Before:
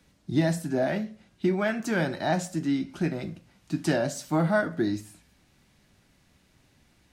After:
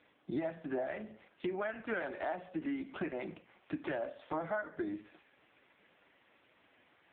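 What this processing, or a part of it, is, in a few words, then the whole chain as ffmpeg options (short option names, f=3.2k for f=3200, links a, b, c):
voicemail: -af "highpass=430,lowpass=3.2k,acompressor=threshold=-40dB:ratio=8,volume=7dB" -ar 8000 -c:a libopencore_amrnb -b:a 5150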